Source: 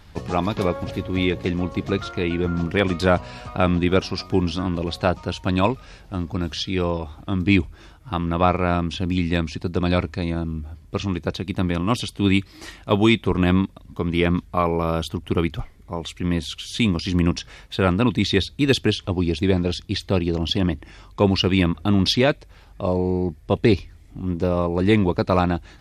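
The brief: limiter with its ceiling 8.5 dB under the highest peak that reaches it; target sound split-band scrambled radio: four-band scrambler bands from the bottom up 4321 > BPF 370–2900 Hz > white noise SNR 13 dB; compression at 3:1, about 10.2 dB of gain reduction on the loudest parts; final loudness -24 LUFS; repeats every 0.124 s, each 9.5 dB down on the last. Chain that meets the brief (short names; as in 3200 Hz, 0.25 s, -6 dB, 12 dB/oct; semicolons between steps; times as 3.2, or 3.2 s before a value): compressor 3:1, threshold -27 dBFS; limiter -20.5 dBFS; feedback echo 0.124 s, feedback 33%, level -9.5 dB; four-band scrambler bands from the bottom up 4321; BPF 370–2900 Hz; white noise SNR 13 dB; gain +12.5 dB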